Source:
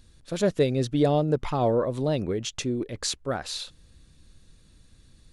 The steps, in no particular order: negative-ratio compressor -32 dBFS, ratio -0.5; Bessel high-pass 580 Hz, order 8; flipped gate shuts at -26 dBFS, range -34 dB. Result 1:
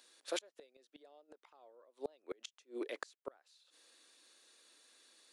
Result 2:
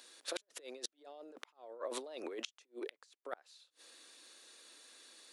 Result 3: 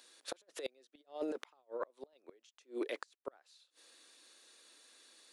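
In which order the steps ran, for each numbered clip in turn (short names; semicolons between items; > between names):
Bessel high-pass > flipped gate > negative-ratio compressor; negative-ratio compressor > Bessel high-pass > flipped gate; Bessel high-pass > negative-ratio compressor > flipped gate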